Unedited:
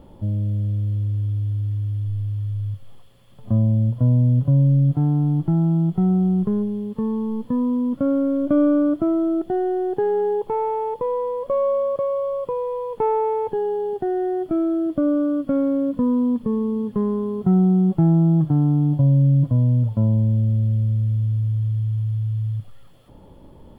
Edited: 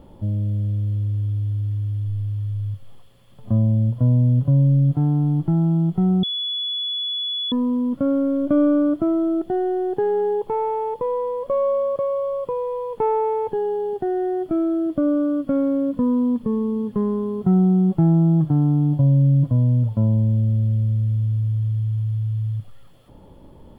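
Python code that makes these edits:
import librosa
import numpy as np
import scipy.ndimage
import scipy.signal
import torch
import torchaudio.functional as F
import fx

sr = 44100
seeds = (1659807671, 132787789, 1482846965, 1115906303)

y = fx.edit(x, sr, fx.bleep(start_s=6.23, length_s=1.29, hz=3410.0, db=-22.5), tone=tone)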